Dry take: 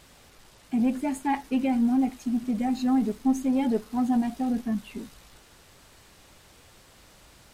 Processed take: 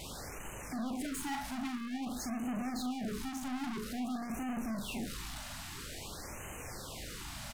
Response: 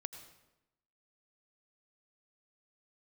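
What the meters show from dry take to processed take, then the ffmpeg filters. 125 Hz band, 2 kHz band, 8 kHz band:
-3.5 dB, -1.5 dB, +3.0 dB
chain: -filter_complex "[0:a]acompressor=threshold=-28dB:ratio=6,aeval=exprs='(tanh(251*val(0)+0.1)-tanh(0.1))/251':c=same,asplit=2[a][b];[b]adelay=40,volume=-7dB[c];[a][c]amix=inputs=2:normalize=0,afftfilt=real='re*(1-between(b*sr/1024,390*pow(4400/390,0.5+0.5*sin(2*PI*0.5*pts/sr))/1.41,390*pow(4400/390,0.5+0.5*sin(2*PI*0.5*pts/sr))*1.41))':imag='im*(1-between(b*sr/1024,390*pow(4400/390,0.5+0.5*sin(2*PI*0.5*pts/sr))/1.41,390*pow(4400/390,0.5+0.5*sin(2*PI*0.5*pts/sr))*1.41))':win_size=1024:overlap=0.75,volume=11dB"

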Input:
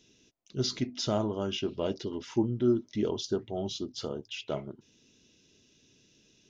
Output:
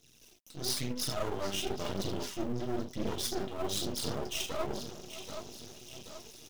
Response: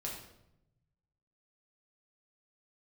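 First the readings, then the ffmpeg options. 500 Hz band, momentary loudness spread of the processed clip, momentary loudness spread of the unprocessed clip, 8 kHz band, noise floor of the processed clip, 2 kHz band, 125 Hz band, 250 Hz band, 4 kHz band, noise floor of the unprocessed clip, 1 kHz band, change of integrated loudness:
-5.0 dB, 13 LU, 10 LU, n/a, -61 dBFS, +2.5 dB, -4.5 dB, -6.5 dB, +0.5 dB, -65 dBFS, +1.0 dB, -3.5 dB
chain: -filter_complex "[0:a]acrossover=split=870[a][b];[a]alimiter=level_in=1dB:limit=-24dB:level=0:latency=1:release=71,volume=-1dB[c];[c][b]amix=inputs=2:normalize=0[d];[1:a]atrim=start_sample=2205,atrim=end_sample=4410[e];[d][e]afir=irnorm=-1:irlink=0,aphaser=in_gain=1:out_gain=1:delay=3.9:decay=0.58:speed=1:type=triangular,aecho=1:1:781|1562|2343|3124:0.126|0.0617|0.0302|0.0148,aeval=exprs='max(val(0),0)':c=same,dynaudnorm=f=190:g=3:m=10dB,aemphasis=mode=production:type=50kf,areverse,acompressor=threshold=-30dB:ratio=6,areverse"

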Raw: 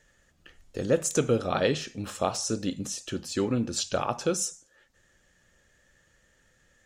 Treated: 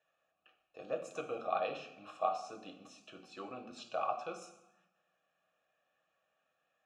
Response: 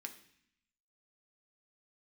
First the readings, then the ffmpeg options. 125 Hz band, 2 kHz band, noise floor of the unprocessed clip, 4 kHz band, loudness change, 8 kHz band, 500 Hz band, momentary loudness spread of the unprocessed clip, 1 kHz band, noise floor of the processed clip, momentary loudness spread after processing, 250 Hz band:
-27.5 dB, -11.5 dB, -66 dBFS, -18.0 dB, -11.0 dB, -27.5 dB, -11.5 dB, 9 LU, -3.5 dB, -82 dBFS, 18 LU, -21.5 dB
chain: -filter_complex "[0:a]asplit=3[a][b][c];[a]bandpass=f=730:t=q:w=8,volume=0dB[d];[b]bandpass=f=1.09k:t=q:w=8,volume=-6dB[e];[c]bandpass=f=2.44k:t=q:w=8,volume=-9dB[f];[d][e][f]amix=inputs=3:normalize=0,bandreject=f=50:t=h:w=6,bandreject=f=100:t=h:w=6,bandreject=f=150:t=h:w=6[g];[1:a]atrim=start_sample=2205,asetrate=32193,aresample=44100[h];[g][h]afir=irnorm=-1:irlink=0,volume=4dB"

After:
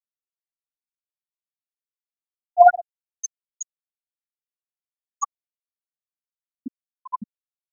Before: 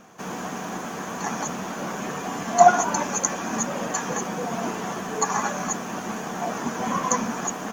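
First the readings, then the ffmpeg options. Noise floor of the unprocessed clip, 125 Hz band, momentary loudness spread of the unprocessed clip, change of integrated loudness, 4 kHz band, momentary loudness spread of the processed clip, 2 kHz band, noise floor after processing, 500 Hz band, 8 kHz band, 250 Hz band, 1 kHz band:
-33 dBFS, under -20 dB, 11 LU, +6.5 dB, under -30 dB, 22 LU, -6.5 dB, under -85 dBFS, 0.0 dB, -11.5 dB, under -15 dB, -0.5 dB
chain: -af "afftfilt=real='re*gte(hypot(re,im),0.708)':imag='im*gte(hypot(re,im),0.708)':win_size=1024:overlap=0.75,aphaser=in_gain=1:out_gain=1:delay=1.3:decay=0.52:speed=0.44:type=triangular,volume=4.5dB"

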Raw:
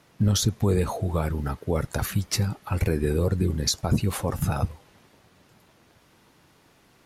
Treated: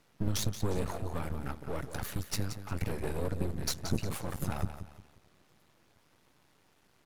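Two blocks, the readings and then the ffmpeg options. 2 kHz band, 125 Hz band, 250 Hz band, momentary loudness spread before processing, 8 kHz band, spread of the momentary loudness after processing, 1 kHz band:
-7.0 dB, -11.0 dB, -10.0 dB, 5 LU, -9.0 dB, 6 LU, -8.5 dB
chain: -af "aecho=1:1:177|354|531|708:0.282|0.093|0.0307|0.0101,aeval=exprs='max(val(0),0)':c=same,volume=-5dB"

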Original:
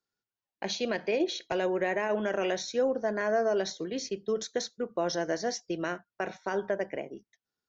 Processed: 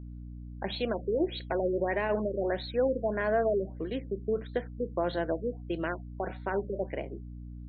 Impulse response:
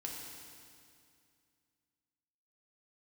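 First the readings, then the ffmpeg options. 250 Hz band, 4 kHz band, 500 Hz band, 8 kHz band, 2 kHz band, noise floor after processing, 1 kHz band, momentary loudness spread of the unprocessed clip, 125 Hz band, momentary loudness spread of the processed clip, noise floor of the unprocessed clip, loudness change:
+0.5 dB, -6.0 dB, 0.0 dB, n/a, -2.5 dB, -43 dBFS, -1.0 dB, 8 LU, +7.0 dB, 10 LU, under -85 dBFS, -0.5 dB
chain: -af "aeval=exprs='val(0)+0.00891*(sin(2*PI*60*n/s)+sin(2*PI*2*60*n/s)/2+sin(2*PI*3*60*n/s)/3+sin(2*PI*4*60*n/s)/4+sin(2*PI*5*60*n/s)/5)':c=same,afftfilt=real='re*lt(b*sr/1024,550*pow(4500/550,0.5+0.5*sin(2*PI*1.6*pts/sr)))':imag='im*lt(b*sr/1024,550*pow(4500/550,0.5+0.5*sin(2*PI*1.6*pts/sr)))':win_size=1024:overlap=0.75"

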